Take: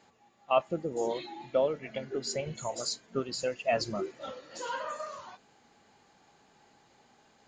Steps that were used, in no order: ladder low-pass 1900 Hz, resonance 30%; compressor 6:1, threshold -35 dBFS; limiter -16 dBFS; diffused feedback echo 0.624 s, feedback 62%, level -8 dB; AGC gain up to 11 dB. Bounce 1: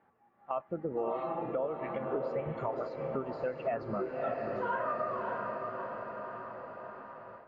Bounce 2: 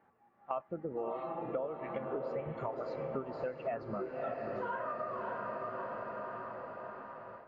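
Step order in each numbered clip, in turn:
diffused feedback echo > compressor > AGC > limiter > ladder low-pass; diffused feedback echo > AGC > ladder low-pass > compressor > limiter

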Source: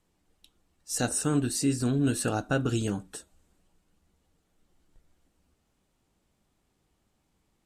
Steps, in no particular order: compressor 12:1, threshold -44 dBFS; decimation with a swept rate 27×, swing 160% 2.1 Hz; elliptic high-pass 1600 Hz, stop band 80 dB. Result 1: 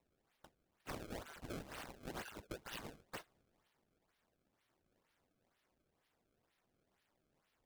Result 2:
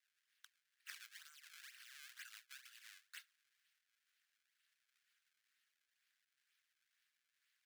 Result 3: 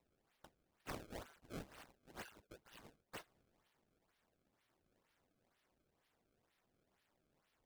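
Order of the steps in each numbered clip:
elliptic high-pass > decimation with a swept rate > compressor; decimation with a swept rate > compressor > elliptic high-pass; compressor > elliptic high-pass > decimation with a swept rate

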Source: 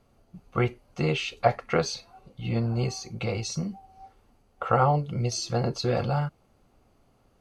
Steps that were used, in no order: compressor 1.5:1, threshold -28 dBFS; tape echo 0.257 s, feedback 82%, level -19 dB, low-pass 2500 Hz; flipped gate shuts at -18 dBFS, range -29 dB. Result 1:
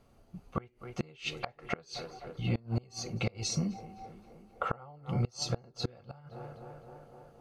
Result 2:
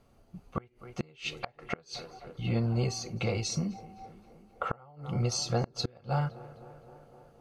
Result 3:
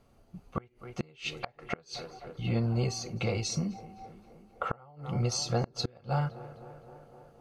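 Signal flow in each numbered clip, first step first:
tape echo > flipped gate > compressor; compressor > tape echo > flipped gate; tape echo > compressor > flipped gate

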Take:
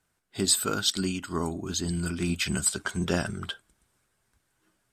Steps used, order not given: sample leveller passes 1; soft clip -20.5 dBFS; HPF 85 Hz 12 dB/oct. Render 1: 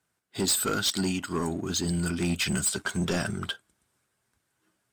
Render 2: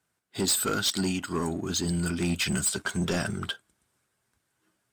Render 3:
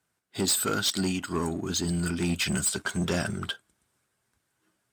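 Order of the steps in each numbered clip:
HPF > sample leveller > soft clip; sample leveller > HPF > soft clip; sample leveller > soft clip > HPF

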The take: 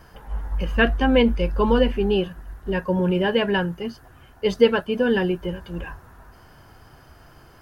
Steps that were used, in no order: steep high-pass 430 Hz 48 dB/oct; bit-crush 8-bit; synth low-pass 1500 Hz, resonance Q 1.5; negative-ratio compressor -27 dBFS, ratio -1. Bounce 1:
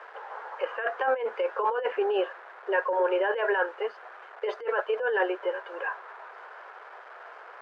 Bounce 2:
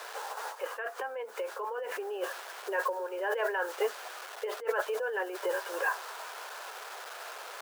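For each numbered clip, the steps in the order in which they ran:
bit-crush > steep high-pass > negative-ratio compressor > synth low-pass; synth low-pass > bit-crush > negative-ratio compressor > steep high-pass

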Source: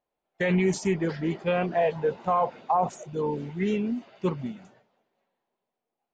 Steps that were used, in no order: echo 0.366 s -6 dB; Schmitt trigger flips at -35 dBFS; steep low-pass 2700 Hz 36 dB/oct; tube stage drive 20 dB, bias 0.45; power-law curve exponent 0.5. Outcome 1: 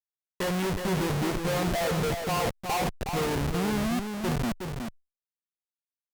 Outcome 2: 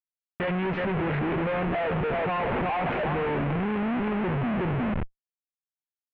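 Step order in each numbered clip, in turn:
steep low-pass > Schmitt trigger > power-law curve > tube stage > echo; tube stage > power-law curve > echo > Schmitt trigger > steep low-pass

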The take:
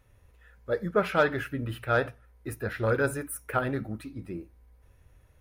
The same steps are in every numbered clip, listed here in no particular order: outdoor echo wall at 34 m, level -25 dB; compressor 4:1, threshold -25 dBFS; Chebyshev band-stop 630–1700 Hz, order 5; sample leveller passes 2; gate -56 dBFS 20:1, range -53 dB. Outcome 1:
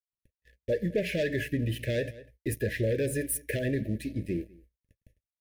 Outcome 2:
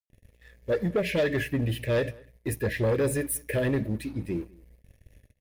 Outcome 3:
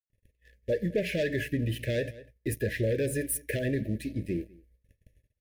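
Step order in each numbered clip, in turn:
sample leveller > outdoor echo > compressor > gate > Chebyshev band-stop; Chebyshev band-stop > compressor > sample leveller > outdoor echo > gate; gate > sample leveller > outdoor echo > compressor > Chebyshev band-stop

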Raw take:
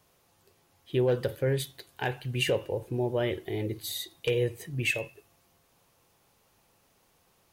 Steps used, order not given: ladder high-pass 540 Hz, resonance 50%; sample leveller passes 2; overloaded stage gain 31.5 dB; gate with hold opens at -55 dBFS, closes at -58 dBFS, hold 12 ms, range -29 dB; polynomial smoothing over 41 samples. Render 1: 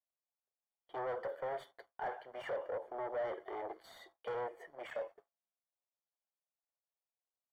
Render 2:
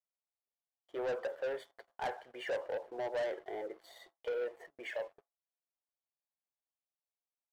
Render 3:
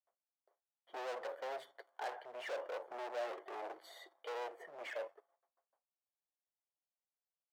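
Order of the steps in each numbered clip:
overloaded stage > ladder high-pass > sample leveller > polynomial smoothing > gate with hold; ladder high-pass > gate with hold > polynomial smoothing > overloaded stage > sample leveller; sample leveller > gate with hold > polynomial smoothing > overloaded stage > ladder high-pass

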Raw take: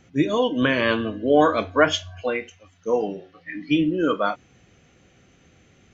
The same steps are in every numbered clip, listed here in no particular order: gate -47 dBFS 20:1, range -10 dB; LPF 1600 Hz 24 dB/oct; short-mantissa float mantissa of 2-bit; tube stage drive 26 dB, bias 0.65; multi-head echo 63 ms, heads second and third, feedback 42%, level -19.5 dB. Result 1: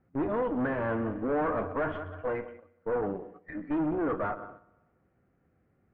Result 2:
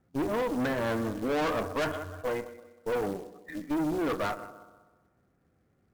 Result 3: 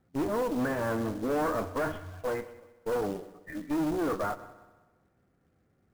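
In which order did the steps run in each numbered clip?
multi-head echo > tube stage > short-mantissa float > LPF > gate; LPF > gate > multi-head echo > short-mantissa float > tube stage; gate > tube stage > LPF > short-mantissa float > multi-head echo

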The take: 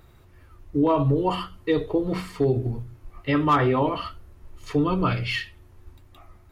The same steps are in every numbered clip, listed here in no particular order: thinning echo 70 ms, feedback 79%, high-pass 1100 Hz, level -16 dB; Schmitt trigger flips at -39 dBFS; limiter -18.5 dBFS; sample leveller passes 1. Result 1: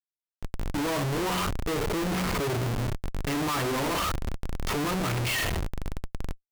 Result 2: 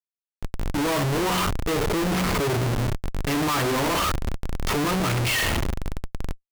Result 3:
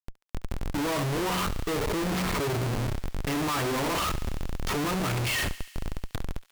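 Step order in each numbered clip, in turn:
sample leveller > limiter > thinning echo > Schmitt trigger; sample leveller > thinning echo > Schmitt trigger > limiter; limiter > sample leveller > Schmitt trigger > thinning echo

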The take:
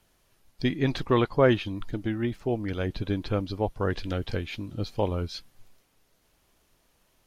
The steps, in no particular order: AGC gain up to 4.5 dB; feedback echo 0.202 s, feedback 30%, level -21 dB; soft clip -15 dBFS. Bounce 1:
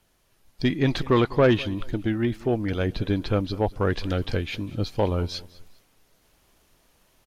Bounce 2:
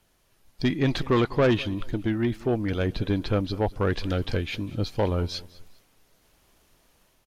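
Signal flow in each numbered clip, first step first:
soft clip > feedback echo > AGC; AGC > soft clip > feedback echo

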